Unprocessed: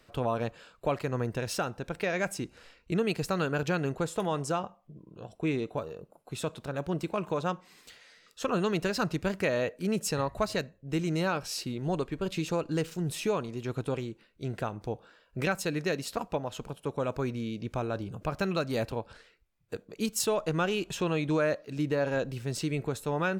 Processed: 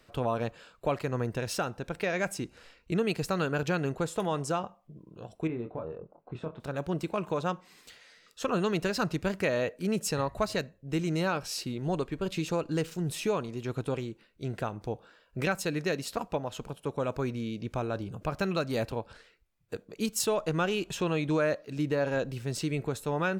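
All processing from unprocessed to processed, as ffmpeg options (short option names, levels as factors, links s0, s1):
-filter_complex "[0:a]asettb=1/sr,asplit=3[s0][s1][s2];[s0]atrim=end=5.474[s3];[s1]atrim=start=5.47:end=6.6,asetpts=PTS-STARTPTS,afade=t=in:d=0.004:c=qsin,afade=t=out:st=1.126:d=0.004:c=qsin,lowpass=1500,acompressor=threshold=0.0251:ratio=4:attack=3.2:release=140:knee=1:detection=peak,asplit=2[s4][s5];[s5]adelay=25,volume=0.501[s6];[s4][s6]amix=inputs=2:normalize=0,atrim=end_sample=49833[s7];[s2]atrim=start=6.596[s8];[s3][s7]acrossfade=d=0.004:c1=hsin:c2=qsin[s9];[s9][s8]acrossfade=d=0.004:c1=qsin:c2=hsin"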